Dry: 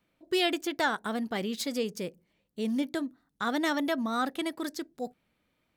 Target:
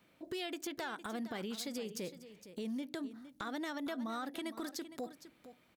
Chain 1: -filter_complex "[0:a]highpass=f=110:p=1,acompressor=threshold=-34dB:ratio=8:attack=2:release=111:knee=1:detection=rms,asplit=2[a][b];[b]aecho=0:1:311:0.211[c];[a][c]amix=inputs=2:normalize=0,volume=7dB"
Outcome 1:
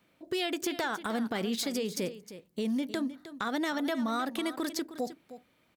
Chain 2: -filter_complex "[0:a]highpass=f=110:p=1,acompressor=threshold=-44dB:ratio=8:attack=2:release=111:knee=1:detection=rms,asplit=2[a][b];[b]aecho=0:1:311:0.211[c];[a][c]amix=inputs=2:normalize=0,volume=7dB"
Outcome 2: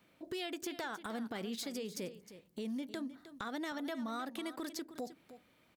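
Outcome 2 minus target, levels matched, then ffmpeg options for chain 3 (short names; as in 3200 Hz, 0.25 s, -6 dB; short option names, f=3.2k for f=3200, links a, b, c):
echo 0.15 s early
-filter_complex "[0:a]highpass=f=110:p=1,acompressor=threshold=-44dB:ratio=8:attack=2:release=111:knee=1:detection=rms,asplit=2[a][b];[b]aecho=0:1:461:0.211[c];[a][c]amix=inputs=2:normalize=0,volume=7dB"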